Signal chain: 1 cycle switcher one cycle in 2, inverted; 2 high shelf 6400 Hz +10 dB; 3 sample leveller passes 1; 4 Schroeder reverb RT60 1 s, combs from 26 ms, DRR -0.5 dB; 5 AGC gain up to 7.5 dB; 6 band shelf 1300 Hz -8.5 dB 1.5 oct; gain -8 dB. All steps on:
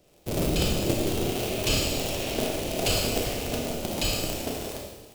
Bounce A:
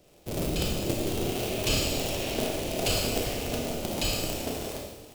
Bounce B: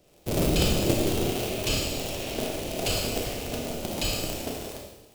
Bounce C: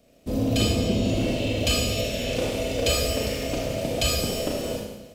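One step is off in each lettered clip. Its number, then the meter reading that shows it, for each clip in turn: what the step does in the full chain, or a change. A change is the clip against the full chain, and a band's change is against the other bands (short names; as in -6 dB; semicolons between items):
3, loudness change -2.0 LU; 5, crest factor change +1.5 dB; 1, 1 kHz band -3.0 dB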